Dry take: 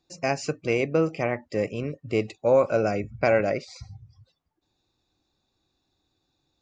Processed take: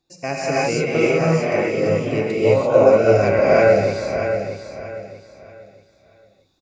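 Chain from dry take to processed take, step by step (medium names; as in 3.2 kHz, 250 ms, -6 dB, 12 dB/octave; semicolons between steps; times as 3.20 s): feedback delay 634 ms, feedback 31%, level -8 dB; gated-style reverb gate 370 ms rising, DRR -7.5 dB; trim -1 dB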